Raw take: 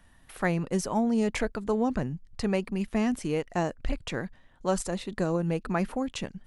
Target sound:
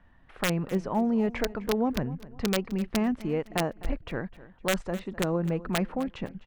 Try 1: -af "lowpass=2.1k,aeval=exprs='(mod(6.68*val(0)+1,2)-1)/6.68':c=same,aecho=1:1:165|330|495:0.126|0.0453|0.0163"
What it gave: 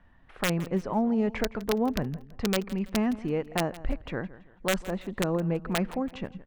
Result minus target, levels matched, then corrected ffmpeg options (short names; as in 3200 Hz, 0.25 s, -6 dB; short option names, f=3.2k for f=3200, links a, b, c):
echo 90 ms early
-af "lowpass=2.1k,aeval=exprs='(mod(6.68*val(0)+1,2)-1)/6.68':c=same,aecho=1:1:255|510|765:0.126|0.0453|0.0163"